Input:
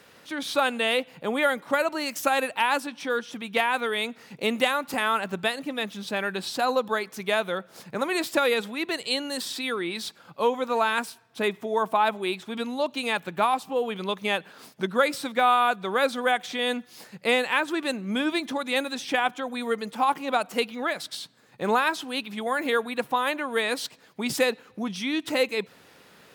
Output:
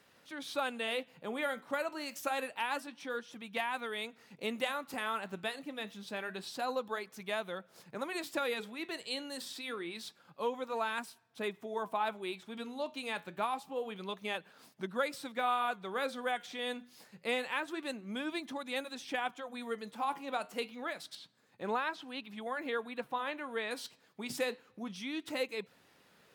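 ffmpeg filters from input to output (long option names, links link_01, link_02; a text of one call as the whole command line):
ffmpeg -i in.wav -filter_complex "[0:a]asettb=1/sr,asplit=3[link_01][link_02][link_03];[link_01]atrim=end=21.154[link_04];[link_02]atrim=start=21.15:end=23.71,asetpts=PTS-STARTPTS,afade=type=in:duration=0.004:curve=qsin,afade=type=out:start_time=2.556:duration=0.004:curve=qsin,acrossover=split=4700[link_05][link_06];[link_06]acompressor=threshold=-54dB:ratio=4:attack=1:release=60[link_07];[link_05][link_07]amix=inputs=2:normalize=0[link_08];[link_03]atrim=start=23.706[link_09];[link_04][link_08]acrossfade=duration=0.004:curve1=hsin:curve2=qsin[link_10];[link_10][link_09]acrossfade=duration=0.004:curve1=qsin:curve2=hsin,flanger=delay=1:depth=9.5:regen=-79:speed=0.27:shape=sinusoidal,volume=-7dB" out.wav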